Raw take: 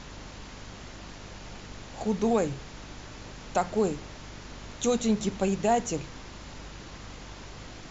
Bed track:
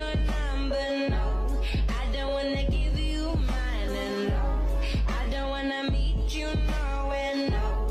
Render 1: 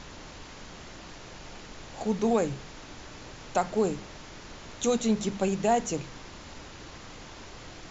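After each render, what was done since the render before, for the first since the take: de-hum 50 Hz, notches 5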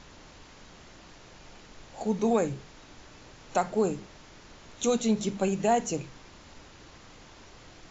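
noise print and reduce 6 dB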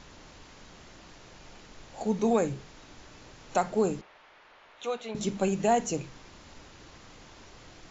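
4.01–5.15 three-band isolator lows -21 dB, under 510 Hz, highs -23 dB, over 3400 Hz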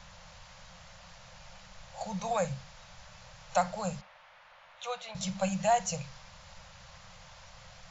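Chebyshev band-stop 190–520 Hz, order 4; dynamic EQ 4800 Hz, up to +5 dB, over -60 dBFS, Q 2.1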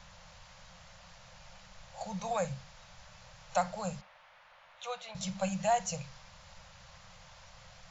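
gain -2.5 dB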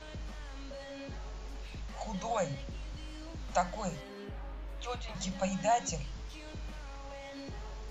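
add bed track -17 dB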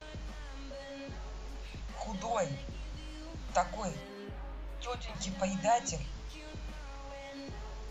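notches 60/120/180 Hz; gate with hold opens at -43 dBFS

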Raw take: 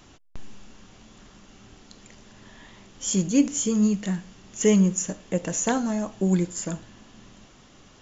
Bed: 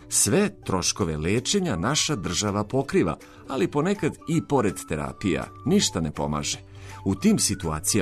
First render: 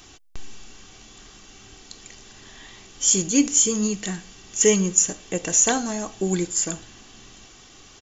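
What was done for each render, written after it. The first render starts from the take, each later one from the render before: high shelf 2400 Hz +10.5 dB; comb 2.6 ms, depth 40%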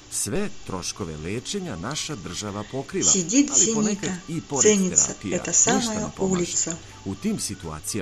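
add bed -6 dB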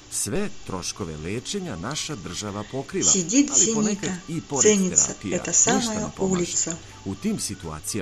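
nothing audible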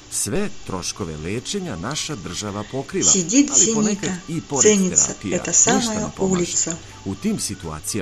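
gain +3.5 dB; limiter -1 dBFS, peak gain reduction 1.5 dB

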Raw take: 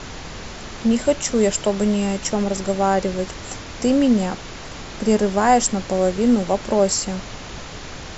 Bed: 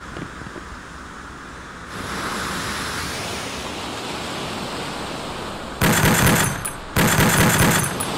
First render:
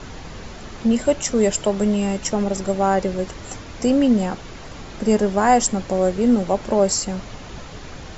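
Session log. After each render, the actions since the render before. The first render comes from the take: denoiser 6 dB, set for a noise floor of -35 dBFS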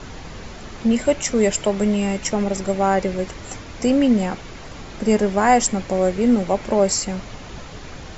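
dynamic EQ 2200 Hz, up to +6 dB, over -47 dBFS, Q 2.9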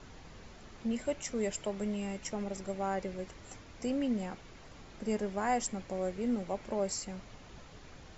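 gain -16 dB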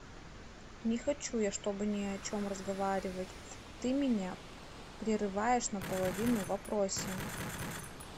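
add bed -25.5 dB

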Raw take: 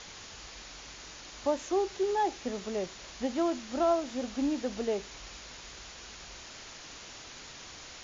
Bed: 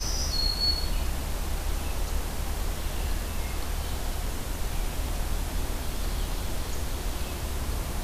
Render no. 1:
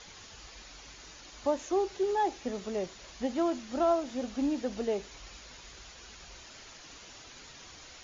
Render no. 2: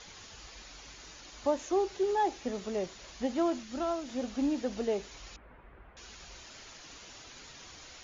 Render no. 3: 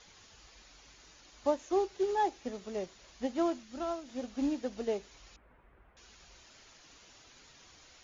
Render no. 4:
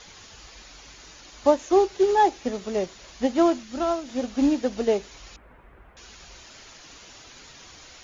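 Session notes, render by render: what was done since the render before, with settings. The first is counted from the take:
denoiser 6 dB, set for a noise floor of -48 dBFS
3.63–4.09 bell 650 Hz -7.5 dB 1.9 oct; 5.36–5.97 Bessel low-pass 1300 Hz, order 6
upward expander 1.5:1, over -40 dBFS
gain +11 dB

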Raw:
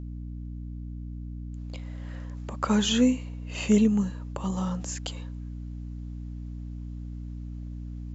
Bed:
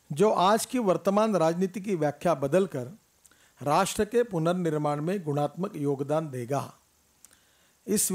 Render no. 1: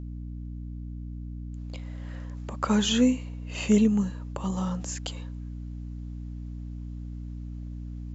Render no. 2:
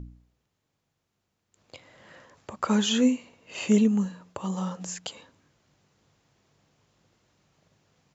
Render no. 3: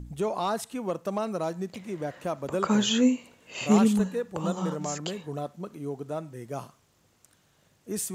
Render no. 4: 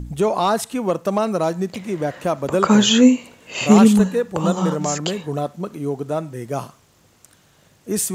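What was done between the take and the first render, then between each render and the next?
nothing audible
de-hum 60 Hz, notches 5
add bed -6.5 dB
gain +10 dB; limiter -1 dBFS, peak gain reduction 3 dB

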